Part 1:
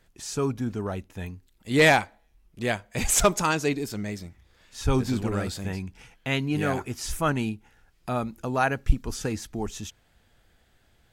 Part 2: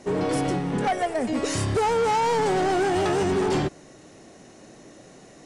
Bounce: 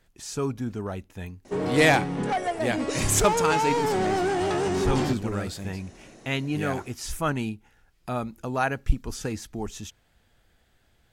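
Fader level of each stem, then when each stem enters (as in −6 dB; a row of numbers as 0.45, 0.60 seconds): −1.5, −2.5 decibels; 0.00, 1.45 seconds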